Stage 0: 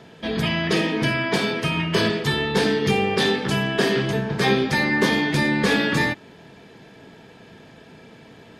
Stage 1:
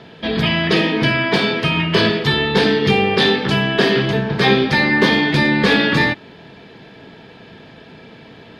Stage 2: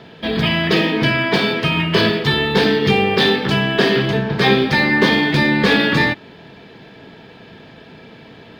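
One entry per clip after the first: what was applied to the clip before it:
resonant high shelf 5.6 kHz -9.5 dB, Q 1.5; trim +5 dB
median filter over 3 samples

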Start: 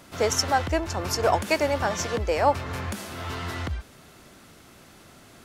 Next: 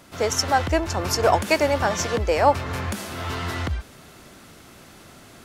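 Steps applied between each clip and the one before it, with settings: level rider gain up to 4 dB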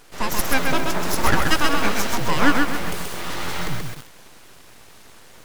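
full-wave rectifier; bit-crushed delay 130 ms, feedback 35%, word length 6-bit, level -3.5 dB; trim +2 dB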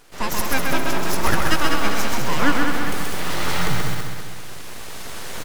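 recorder AGC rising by 6.7 dB/s; on a send: feedback delay 199 ms, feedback 47%, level -6 dB; on the sum: trim -2 dB

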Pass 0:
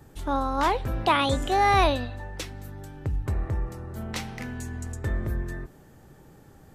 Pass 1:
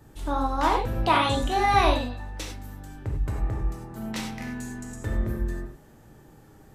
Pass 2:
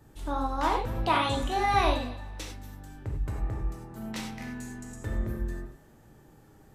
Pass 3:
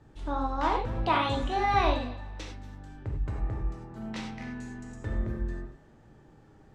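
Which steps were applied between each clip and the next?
gated-style reverb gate 120 ms flat, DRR 0.5 dB; trim -2.5 dB
thinning echo 234 ms, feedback 25%, level -20 dB; trim -4 dB
distance through air 100 m

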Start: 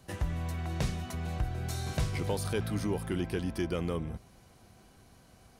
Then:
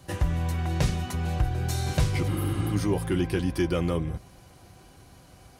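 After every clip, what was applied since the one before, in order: comb of notches 220 Hz; spectral replace 2.30–2.68 s, 220–10000 Hz after; trim +7.5 dB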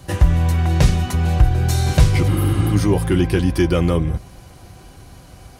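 bass shelf 70 Hz +8 dB; trim +8 dB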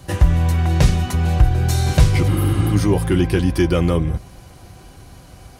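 no audible change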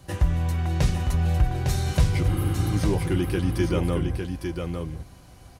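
delay 855 ms -5.5 dB; trim -8 dB

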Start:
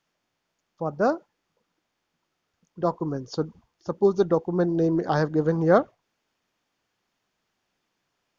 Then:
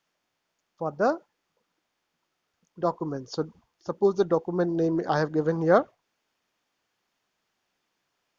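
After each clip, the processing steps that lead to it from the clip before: bass shelf 270 Hz -6 dB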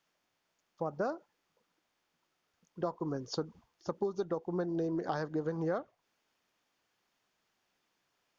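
compression 8:1, threshold -29 dBFS, peak gain reduction 15.5 dB; trim -1.5 dB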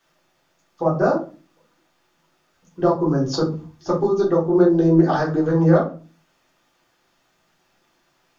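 simulated room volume 190 m³, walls furnished, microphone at 3.6 m; trim +7 dB

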